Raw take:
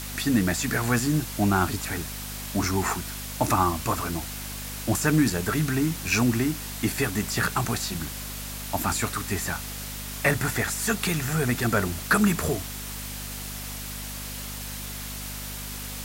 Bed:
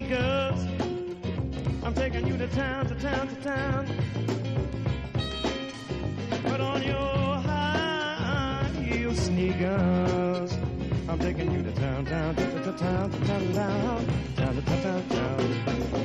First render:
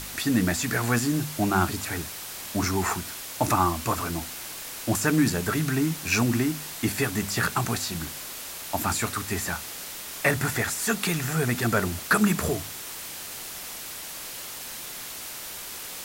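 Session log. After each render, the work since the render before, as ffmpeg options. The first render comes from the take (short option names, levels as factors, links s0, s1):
-af "bandreject=f=50:t=h:w=4,bandreject=f=100:t=h:w=4,bandreject=f=150:t=h:w=4,bandreject=f=200:t=h:w=4,bandreject=f=250:t=h:w=4"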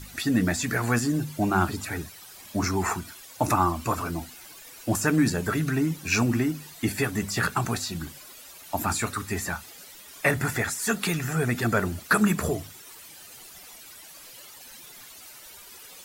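-af "afftdn=nr=13:nf=-38"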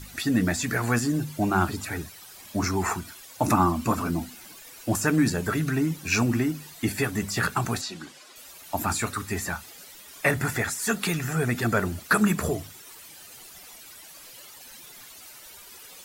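-filter_complex "[0:a]asettb=1/sr,asplit=3[s0][s1][s2];[s0]atrim=end=3.454[s3];[s1]atrim=start=3.45:end=4.56,asetpts=PTS-STARTPTS,afade=t=in:d=0.004:c=qsin,afade=t=out:st=1.106:d=0.004:c=qsin,equalizer=f=220:t=o:w=0.77:g=10[s4];[s2]atrim=start=4.556[s5];[s3][s4]acrossfade=d=0.004:c1=hsin:c2=qsin[s6];[s6][s5]acrossfade=d=0.004:c1=qsin:c2=hsin,asettb=1/sr,asplit=3[s7][s8][s9];[s7]atrim=end=7.814[s10];[s8]atrim=start=7.81:end=8.36,asetpts=PTS-STARTPTS,afade=t=in:d=0.004:c=qsin,afade=t=out:st=0.546:d=0.004:c=qsin,highpass=280,lowpass=7100[s11];[s9]atrim=start=8.356[s12];[s10][s11]acrossfade=d=0.004:c1=hsin:c2=qsin[s13];[s13][s12]acrossfade=d=0.004:c1=qsin:c2=hsin"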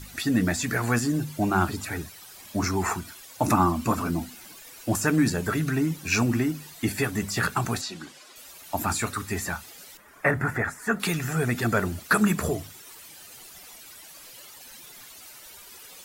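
-filter_complex "[0:a]asettb=1/sr,asplit=3[s0][s1][s2];[s0]atrim=end=9.974[s3];[s1]atrim=start=9.97:end=11,asetpts=PTS-STARTPTS,afade=t=in:d=0.004:c=qsin,afade=t=out:st=1.026:d=0.004:c=qsin,highshelf=f=2400:t=q:w=1.5:g=-12.5[s4];[s2]atrim=start=10.996[s5];[s3][s4]acrossfade=d=0.004:c1=hsin:c2=qsin[s6];[s6][s5]acrossfade=d=0.004:c1=qsin:c2=hsin"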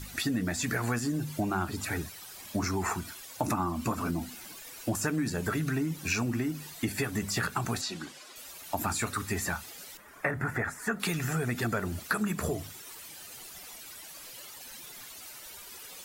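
-af "acompressor=threshold=0.0447:ratio=6"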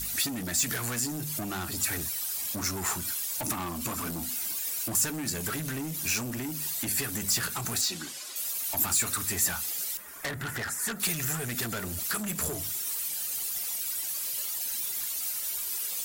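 -af "asoftclip=type=tanh:threshold=0.0266,crystalizer=i=3.5:c=0"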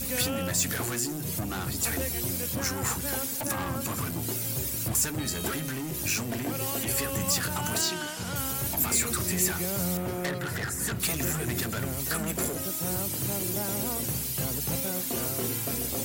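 -filter_complex "[1:a]volume=0.447[s0];[0:a][s0]amix=inputs=2:normalize=0"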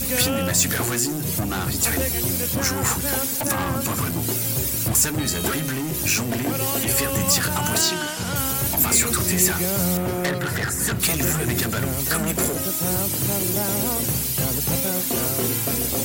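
-af "volume=2.37"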